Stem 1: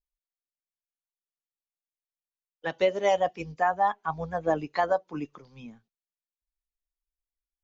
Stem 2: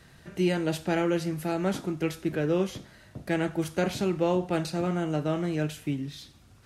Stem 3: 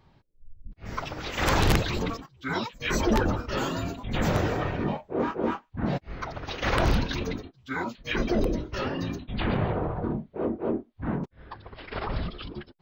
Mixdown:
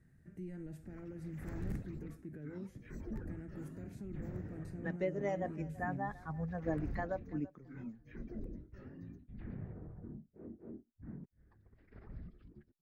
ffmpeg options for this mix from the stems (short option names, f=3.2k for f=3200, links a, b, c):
-filter_complex "[0:a]adelay=2200,volume=-1dB,asplit=2[a][b];[b]volume=-19.5dB[c];[1:a]alimiter=level_in=1dB:limit=-24dB:level=0:latency=1:release=70,volume=-1dB,volume=-9.5dB[d];[2:a]volume=-17dB[e];[c]aecho=0:1:334|668|1002:1|0.19|0.0361[f];[a][d][e][f]amix=inputs=4:normalize=0,firequalizer=gain_entry='entry(200,0);entry(530,-12);entry(1000,-19);entry(1800,-9);entry(3100,-27);entry(8000,-13)':delay=0.05:min_phase=1"